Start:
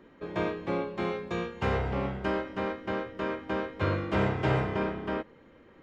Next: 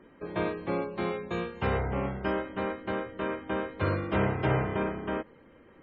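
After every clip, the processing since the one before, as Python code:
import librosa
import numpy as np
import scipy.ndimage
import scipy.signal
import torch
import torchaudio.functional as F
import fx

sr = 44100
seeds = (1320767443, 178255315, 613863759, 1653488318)

y = fx.spec_gate(x, sr, threshold_db=-30, keep='strong')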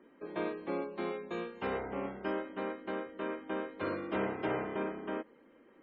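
y = fx.low_shelf_res(x, sr, hz=170.0, db=-12.5, q=1.5)
y = F.gain(torch.from_numpy(y), -6.5).numpy()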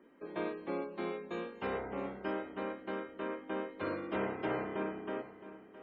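y = fx.echo_feedback(x, sr, ms=666, feedback_pct=29, wet_db=-14.5)
y = F.gain(torch.from_numpy(y), -1.5).numpy()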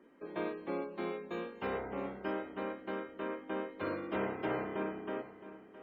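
y = np.interp(np.arange(len(x)), np.arange(len(x))[::2], x[::2])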